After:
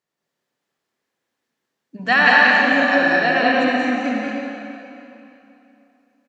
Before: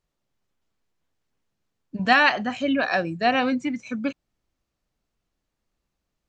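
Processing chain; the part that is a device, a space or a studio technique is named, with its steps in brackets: stadium PA (high-pass 220 Hz 12 dB/octave; peaking EQ 1.8 kHz +5.5 dB 0.31 oct; loudspeakers at several distances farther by 62 m -3 dB, 73 m -3 dB; reverberation RT60 3.0 s, pre-delay 53 ms, DRR -1 dB); trim -1.5 dB

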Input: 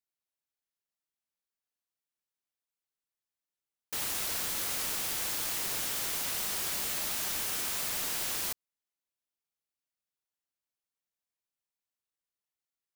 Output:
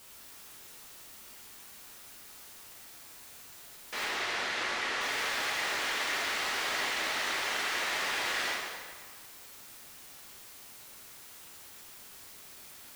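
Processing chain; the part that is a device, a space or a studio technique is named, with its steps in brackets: drive-through speaker (band-pass 390–3600 Hz; peaking EQ 1.9 kHz +5.5 dB 0.36 oct; hard clipper -36.5 dBFS, distortion -15 dB; white noise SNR 13 dB); 4.04–5.01 s: distance through air 54 m; plate-style reverb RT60 1.7 s, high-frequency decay 0.8×, DRR -4 dB; trim +3.5 dB

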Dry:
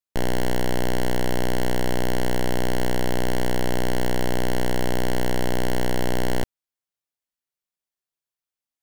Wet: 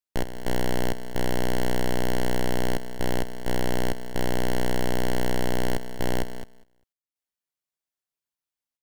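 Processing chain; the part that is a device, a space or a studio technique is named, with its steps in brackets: trance gate with a delay (trance gate "x.xx.xxxxxxx." 65 bpm -12 dB; feedback delay 199 ms, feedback 25%, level -21 dB); trim -2 dB

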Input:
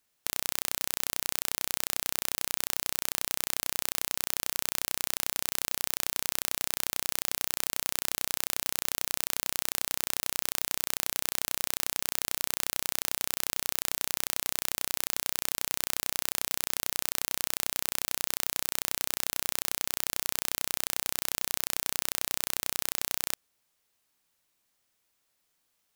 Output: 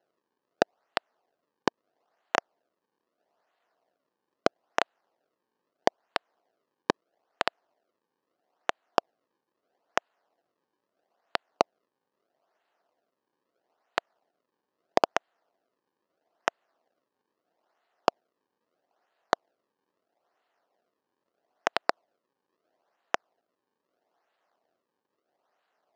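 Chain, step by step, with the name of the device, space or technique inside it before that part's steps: circuit-bent sampling toy (decimation with a swept rate 37×, swing 160% 0.77 Hz; cabinet simulation 450–5400 Hz, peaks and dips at 690 Hz +7 dB, 2.3 kHz -7 dB, 3.5 kHz -5 dB)

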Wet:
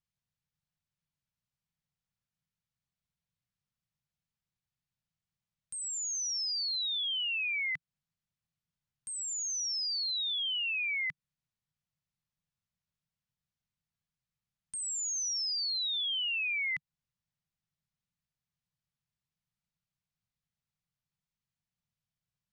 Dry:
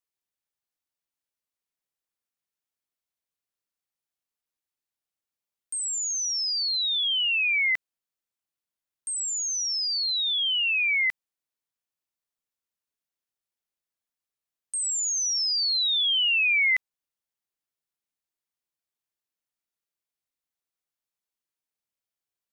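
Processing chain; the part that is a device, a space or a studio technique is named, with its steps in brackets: jukebox (low-pass 6.3 kHz; resonant low shelf 230 Hz +13.5 dB, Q 3; compression, threshold -30 dBFS, peak gain reduction 9 dB); trim -2 dB

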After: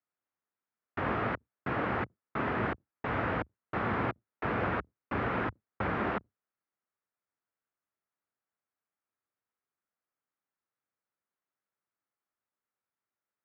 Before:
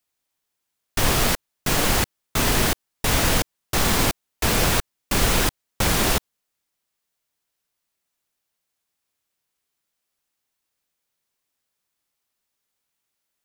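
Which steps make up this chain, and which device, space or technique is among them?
sub-octave bass pedal (octave divider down 1 oct, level -5 dB; cabinet simulation 79–2000 Hz, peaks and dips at 80 Hz -7 dB, 150 Hz -7 dB, 1.3 kHz +4 dB); trim -8 dB

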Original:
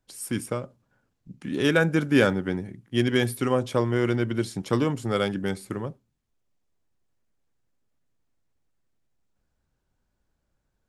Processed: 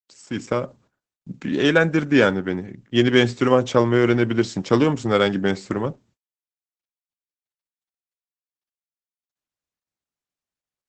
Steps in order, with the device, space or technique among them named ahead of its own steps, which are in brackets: video call (high-pass 160 Hz 6 dB/octave; level rider gain up to 14 dB; gate -52 dBFS, range -33 dB; trim -1 dB; Opus 12 kbps 48 kHz)

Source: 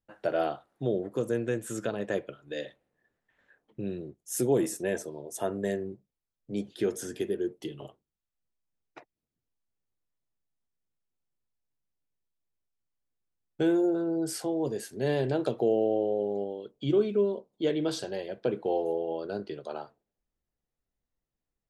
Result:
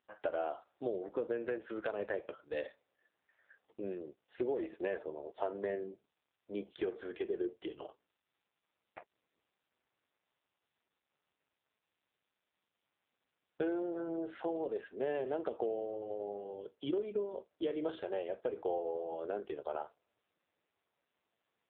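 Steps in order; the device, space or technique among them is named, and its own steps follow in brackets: 17.16–17.84 s: gate with hold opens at -52 dBFS; voicemail (band-pass 450–2700 Hz; compression 12:1, threshold -33 dBFS, peak gain reduction 10 dB; trim +2.5 dB; AMR-NB 5.9 kbps 8 kHz)

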